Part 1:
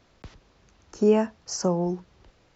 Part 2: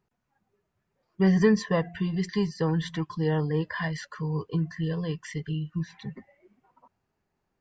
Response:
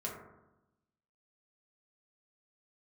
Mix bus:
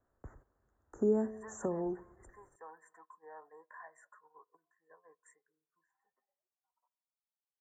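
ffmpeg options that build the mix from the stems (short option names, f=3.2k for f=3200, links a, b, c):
-filter_complex "[0:a]equalizer=f=180:t=o:w=0.32:g=-12,volume=-5.5dB,asplit=2[a][b];[b]volume=-20.5dB[c];[1:a]highpass=f=770:w=0.5412,highpass=f=770:w=1.3066,equalizer=f=2.1k:w=0.36:g=-15,volume=-4dB,asplit=2[d][e];[e]volume=-18dB[f];[2:a]atrim=start_sample=2205[g];[c][f]amix=inputs=2:normalize=0[h];[h][g]afir=irnorm=-1:irlink=0[i];[a][d][i]amix=inputs=3:normalize=0,agate=range=-12dB:threshold=-58dB:ratio=16:detection=peak,acrossover=split=390|3000[j][k][l];[k]acompressor=threshold=-41dB:ratio=4[m];[j][m][l]amix=inputs=3:normalize=0,asuperstop=centerf=3700:order=12:qfactor=0.66"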